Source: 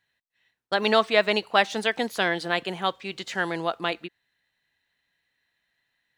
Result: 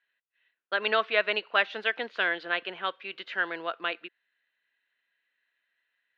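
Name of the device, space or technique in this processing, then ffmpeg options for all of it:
phone earpiece: -af "highpass=420,equalizer=frequency=810:width_type=q:width=4:gain=-8,equalizer=frequency=1500:width_type=q:width=4:gain=6,equalizer=frequency=2700:width_type=q:width=4:gain=4,lowpass=frequency=3500:width=0.5412,lowpass=frequency=3500:width=1.3066,volume=-4dB"

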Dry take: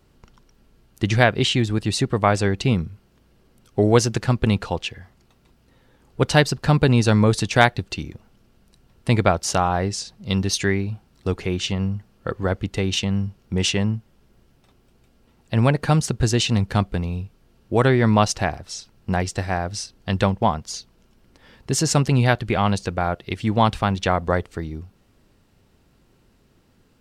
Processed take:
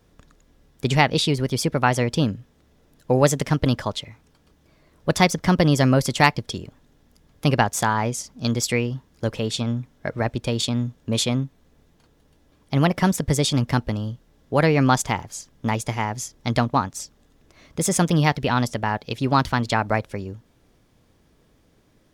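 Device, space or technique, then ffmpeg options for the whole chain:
nightcore: -af "asetrate=53802,aresample=44100,volume=-1dB"

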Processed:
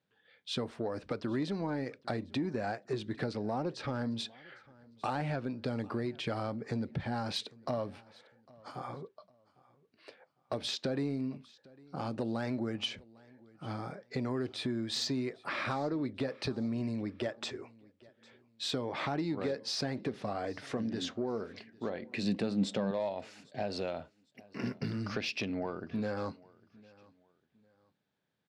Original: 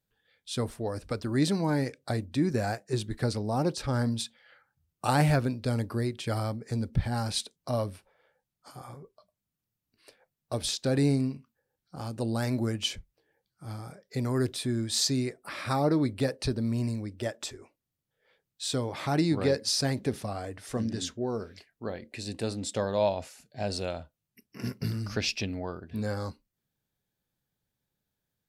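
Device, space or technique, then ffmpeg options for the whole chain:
AM radio: -filter_complex "[0:a]highpass=170,lowpass=3500,acompressor=threshold=-36dB:ratio=5,asoftclip=type=tanh:threshold=-27.5dB,aecho=1:1:803|1606:0.0631|0.0202,asettb=1/sr,asplit=3[link_01][link_02][link_03];[link_01]atrim=end=22.094[link_04];[link_02]atrim=start=22.09:end=22.91,asetpts=PTS-STARTPTS,afade=type=in:duration=0.004:curve=qsin,afade=type=out:start_time=0.816:duration=0.004:curve=qsin,equalizer=frequency=190:width=4.8:gain=15[link_05];[link_03]atrim=start=22.906[link_06];[link_04][link_05]acrossfade=duration=0.004:curve1=hsin:curve2=qsin[link_07];[link_07][link_06]acrossfade=duration=0.004:curve1=qsin:curve2=hsin,volume=5dB"

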